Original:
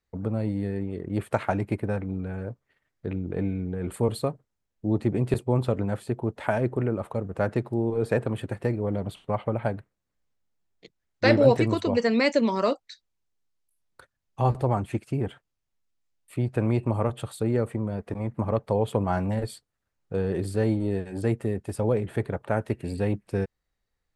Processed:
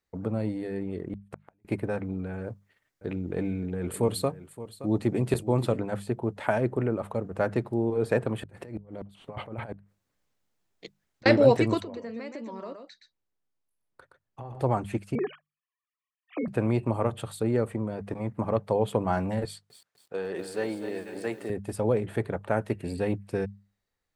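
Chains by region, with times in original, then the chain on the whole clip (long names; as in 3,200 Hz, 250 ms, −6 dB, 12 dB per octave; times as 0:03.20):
0:01.13–0:01.65: parametric band 71 Hz +9 dB 2 octaves + downward compressor 1.5 to 1, threshold −29 dBFS + gate with flip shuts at −23 dBFS, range −42 dB
0:02.44–0:05.77: high-shelf EQ 3,800 Hz +6 dB + single-tap delay 571 ms −15 dB
0:08.42–0:11.26: compressor whose output falls as the input rises −32 dBFS, ratio −0.5 + gate with flip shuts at −21 dBFS, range −26 dB
0:11.82–0:14.60: high-shelf EQ 2,600 Hz −11 dB + downward compressor 8 to 1, threshold −35 dBFS + single-tap delay 120 ms −6.5 dB
0:15.15–0:16.48: three sine waves on the formant tracks + comb filter 1.7 ms, depth 47%
0:19.45–0:21.50: meter weighting curve A + feedback echo at a low word length 250 ms, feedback 55%, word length 9 bits, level −9.5 dB
whole clip: low-shelf EQ 73 Hz −8.5 dB; mains-hum notches 50/100/150/200 Hz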